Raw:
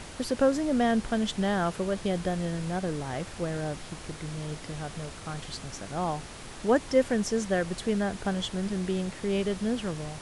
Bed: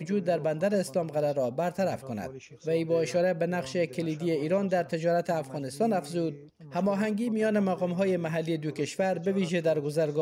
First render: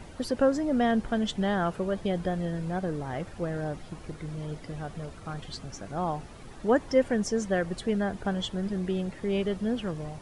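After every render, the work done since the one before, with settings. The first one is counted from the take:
broadband denoise 11 dB, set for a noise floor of −43 dBFS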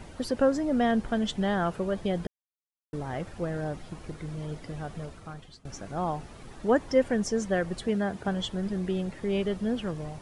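0:02.27–0:02.93: silence
0:05.02–0:05.65: fade out linear, to −20 dB
0:07.88–0:08.28: high-pass filter 81 Hz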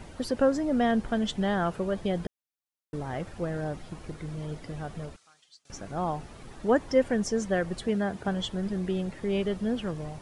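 0:05.16–0:05.70: resonant band-pass 6,200 Hz, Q 1.1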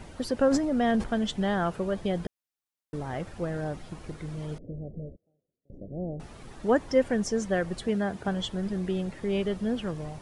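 0:00.48–0:01.04: transient designer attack −4 dB, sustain +11 dB
0:04.58–0:06.20: elliptic low-pass filter 570 Hz, stop band 50 dB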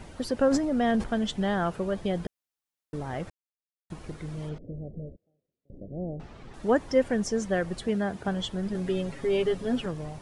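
0:03.30–0:03.90: silence
0:04.49–0:06.54: high-frequency loss of the air 110 metres
0:08.74–0:09.86: comb filter 7.3 ms, depth 91%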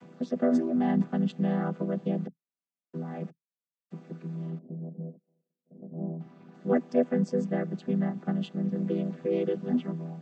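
channel vocoder with a chord as carrier minor triad, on E3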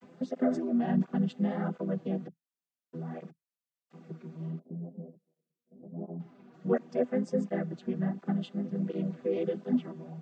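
pitch vibrato 0.86 Hz 51 cents
through-zero flanger with one copy inverted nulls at 1.4 Hz, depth 7.3 ms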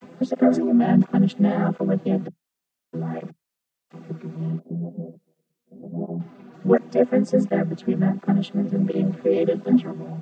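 level +10.5 dB

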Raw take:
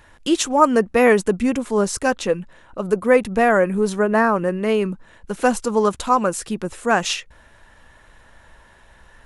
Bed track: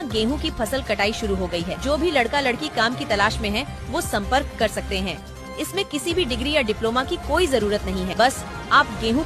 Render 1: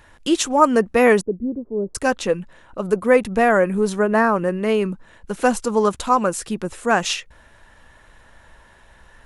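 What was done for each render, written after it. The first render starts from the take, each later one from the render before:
0:01.21–0:01.95: transistor ladder low-pass 520 Hz, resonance 35%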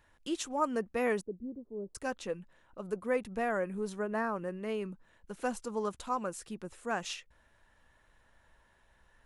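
level −16.5 dB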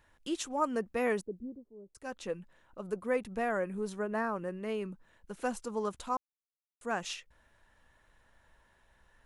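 0:01.42–0:02.28: duck −11 dB, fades 0.30 s
0:06.17–0:06.81: silence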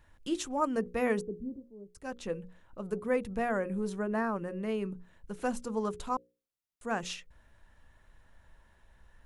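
low-shelf EQ 220 Hz +9.5 dB
mains-hum notches 60/120/180/240/300/360/420/480/540 Hz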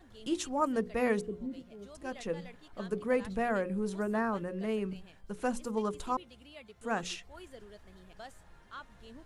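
mix in bed track −31 dB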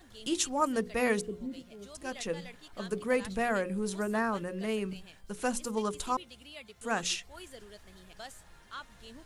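high-shelf EQ 2,400 Hz +10.5 dB

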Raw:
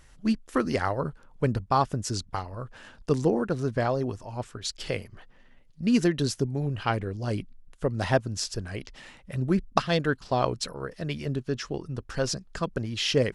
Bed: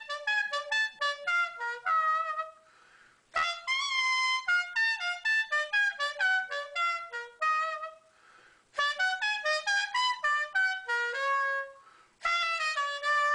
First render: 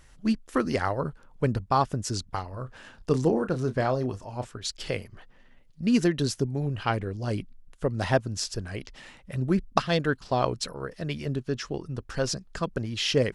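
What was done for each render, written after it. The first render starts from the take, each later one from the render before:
0:02.51–0:04.50: double-tracking delay 31 ms −11 dB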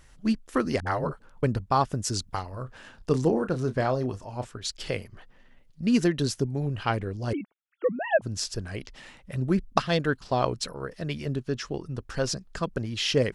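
0:00.80–0:01.43: all-pass dispersion highs, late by 64 ms, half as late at 320 Hz
0:01.93–0:02.63: high-shelf EQ 4,600 Hz +5 dB
0:07.33–0:08.22: three sine waves on the formant tracks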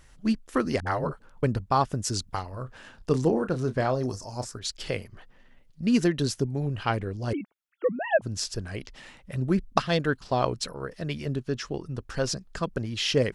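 0:04.03–0:04.59: high shelf with overshoot 4,000 Hz +9.5 dB, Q 3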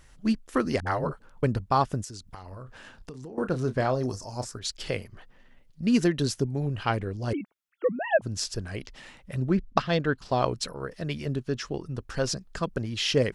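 0:02.04–0:03.38: downward compressor 16 to 1, threshold −37 dBFS
0:09.48–0:10.18: high-frequency loss of the air 90 metres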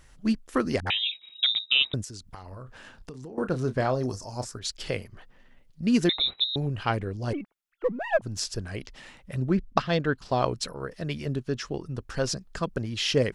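0:00.90–0:01.94: voice inversion scrambler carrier 3,800 Hz
0:06.09–0:06.56: voice inversion scrambler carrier 3,900 Hz
0:07.31–0:08.39: gain on one half-wave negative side −3 dB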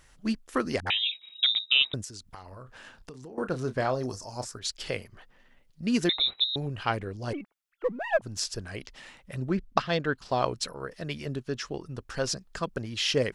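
low-shelf EQ 380 Hz −5.5 dB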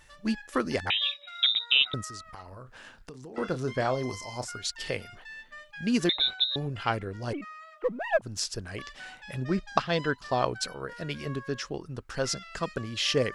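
mix in bed −17 dB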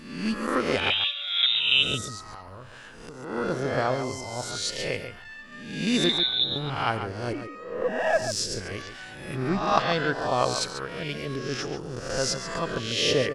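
peak hold with a rise ahead of every peak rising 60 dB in 0.80 s
slap from a distant wall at 24 metres, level −9 dB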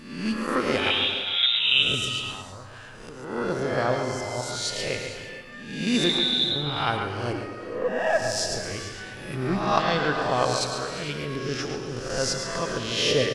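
on a send: single-tap delay 109 ms −10 dB
on the sum: reverb whose tail is shaped and stops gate 490 ms flat, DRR 7 dB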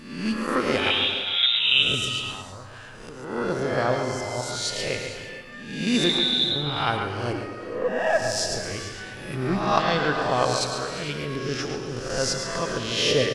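level +1 dB

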